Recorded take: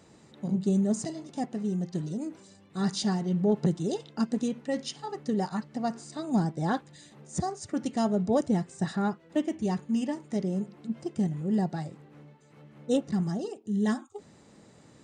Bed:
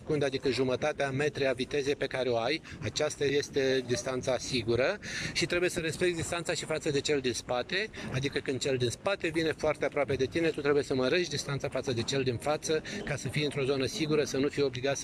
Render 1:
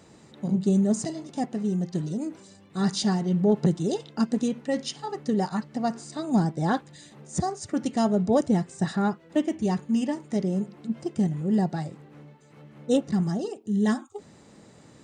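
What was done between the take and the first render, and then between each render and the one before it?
trim +3.5 dB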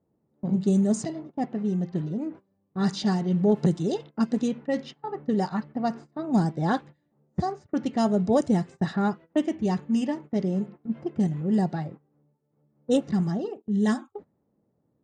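level-controlled noise filter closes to 660 Hz, open at -18 dBFS; gate -40 dBFS, range -19 dB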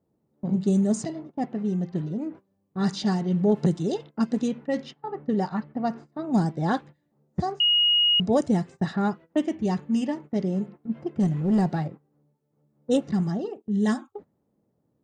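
4.93–6.07 s: treble shelf 6 kHz -10 dB; 7.60–8.20 s: bleep 2.88 kHz -17 dBFS; 11.22–11.88 s: waveshaping leveller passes 1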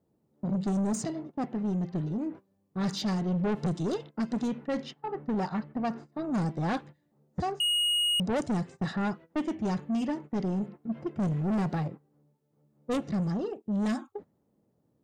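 saturation -25 dBFS, distortion -10 dB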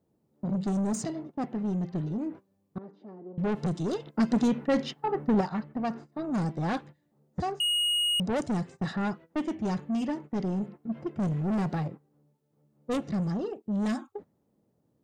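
2.78–3.38 s: ladder band-pass 410 Hz, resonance 45%; 4.07–5.41 s: gain +6 dB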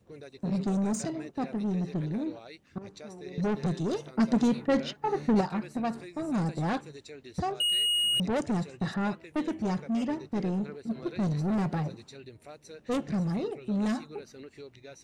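add bed -17.5 dB

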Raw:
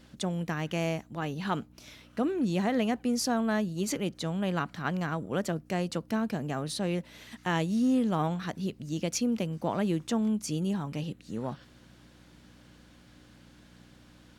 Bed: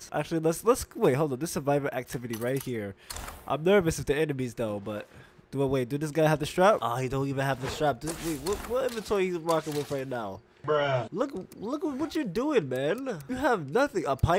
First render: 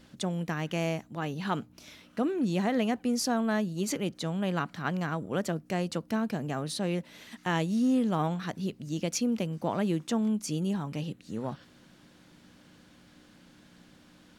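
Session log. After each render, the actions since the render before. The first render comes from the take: de-hum 60 Hz, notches 2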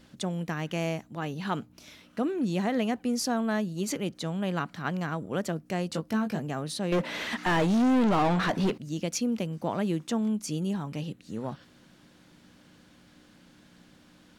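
5.92–6.40 s: doubling 19 ms -5 dB; 6.92–8.78 s: overdrive pedal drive 30 dB, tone 1.5 kHz, clips at -16.5 dBFS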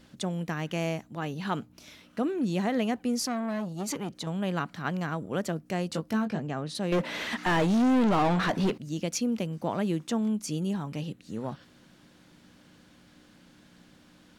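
3.18–4.27 s: transformer saturation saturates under 910 Hz; 6.25–6.75 s: distance through air 74 m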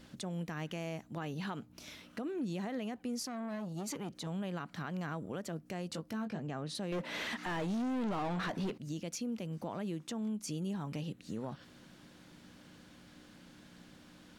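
compression 3:1, threshold -37 dBFS, peak gain reduction 12 dB; peak limiter -30.5 dBFS, peak gain reduction 7.5 dB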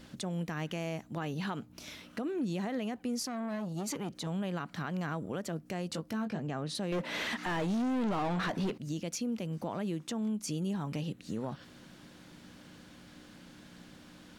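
trim +3.5 dB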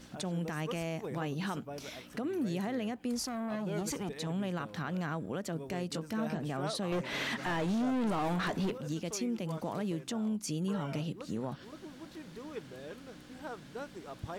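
add bed -18 dB

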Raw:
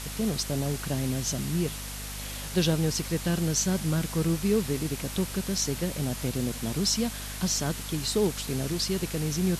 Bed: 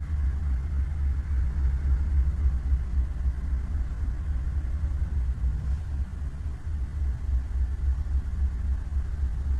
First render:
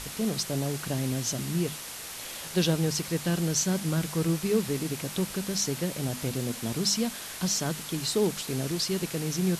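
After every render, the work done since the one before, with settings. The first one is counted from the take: hum notches 50/100/150/200/250 Hz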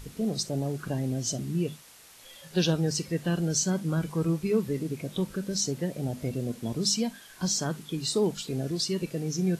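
noise print and reduce 13 dB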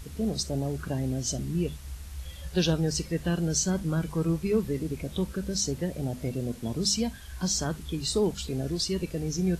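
add bed -15.5 dB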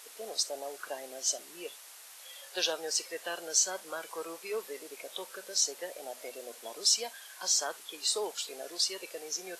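high-pass 540 Hz 24 dB/octave; peaking EQ 11 kHz +3 dB 1.4 oct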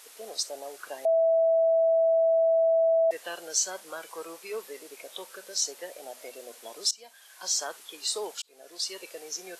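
1.05–3.11 s: bleep 656 Hz -19 dBFS; 6.91–7.52 s: fade in, from -23.5 dB; 8.42–8.96 s: fade in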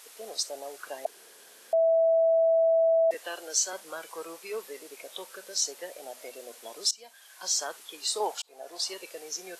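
1.06–1.73 s: room tone; 3.14–3.73 s: high-pass 230 Hz 24 dB/octave; 8.20–8.94 s: peaking EQ 790 Hz +12.5 dB 0.97 oct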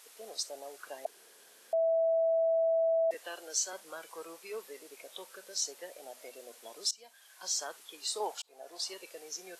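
trim -5.5 dB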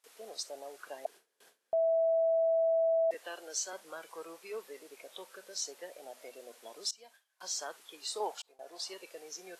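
gate with hold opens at -46 dBFS; treble shelf 4.1 kHz -5.5 dB

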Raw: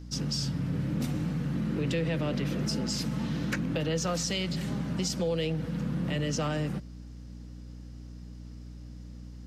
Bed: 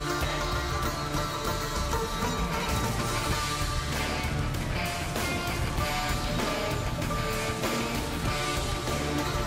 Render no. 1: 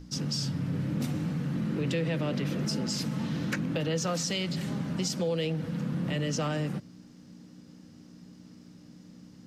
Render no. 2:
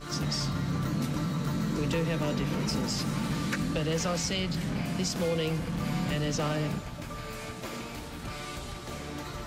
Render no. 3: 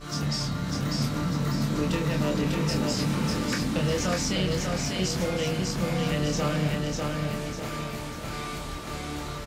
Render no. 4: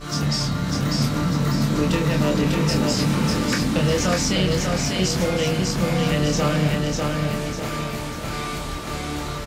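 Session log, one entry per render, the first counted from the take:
hum notches 60/120 Hz
add bed -9.5 dB
doubling 27 ms -4.5 dB; feedback delay 598 ms, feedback 43%, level -3 dB
trim +6 dB

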